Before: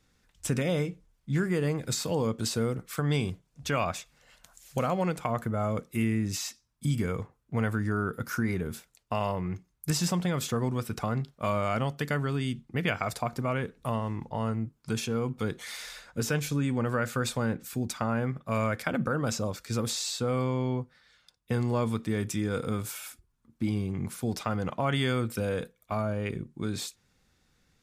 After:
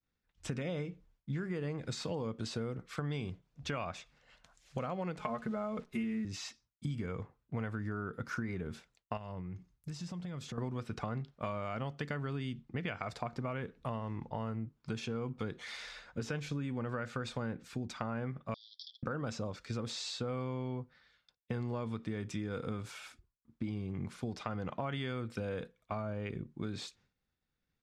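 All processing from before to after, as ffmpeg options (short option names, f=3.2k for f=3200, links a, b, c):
-filter_complex "[0:a]asettb=1/sr,asplit=3[a][b][c];[a]atrim=end=5.194[d];[b]atrim=start=5.19:end=6.25,asetpts=PTS-STARTPTS,afade=t=in:d=0.004:c=qsin,afade=t=out:st=1.056:d=0.004:c=qsin,aecho=1:1:4.7:0.98,atrim=end_sample=46746,acrusher=bits=9:dc=4:mix=0:aa=0.000001[e];[c]atrim=start=6.246[f];[d][e]acrossfade=d=0.004:c1=hsin:c2=qsin[g];[g][f]acrossfade=d=0.004:c1=qsin:c2=hsin,asettb=1/sr,asplit=3[h][i][j];[h]atrim=end=9.174[k];[i]atrim=start=9.17:end=10.58,asetpts=PTS-STARTPTS,afade=t=in:d=0.004:c=qsin,afade=t=out:st=1.406:d=0.004:c=qsin,bass=f=250:g=7,treble=f=4k:g=5,acompressor=threshold=-35dB:ratio=12:attack=3.2:release=140:knee=1:detection=peak[l];[j]atrim=start=10.576[m];[k][l]acrossfade=d=0.004:c1=hsin:c2=qsin[n];[n][m]acrossfade=d=0.004:c1=qsin:c2=hsin,asettb=1/sr,asplit=3[o][p][q];[o]atrim=end=18.544[r];[p]atrim=start=18.54:end=19.03,asetpts=PTS-STARTPTS,afade=t=in:d=0.004:c=qsin,afade=t=out:st=0.486:d=0.004:c=qsin,aemphasis=mode=production:type=75fm,asoftclip=type=hard:threshold=-24.5dB,asuperpass=centerf=4300:order=20:qfactor=1.8[s];[q]atrim=start=19.026[t];[r][s]acrossfade=d=0.004:c1=hsin:c2=qsin[u];[u][t]acrossfade=d=0.004:c1=qsin:c2=hsin,lowpass=4.5k,agate=range=-33dB:threshold=-58dB:ratio=3:detection=peak,acompressor=threshold=-31dB:ratio=6,volume=-3dB"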